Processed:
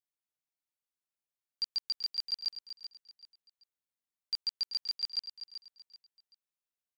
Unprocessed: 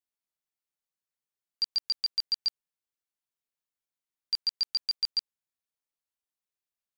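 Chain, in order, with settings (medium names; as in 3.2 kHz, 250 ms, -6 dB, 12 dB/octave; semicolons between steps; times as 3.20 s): feedback delay 384 ms, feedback 29%, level -10.5 dB; trim -5 dB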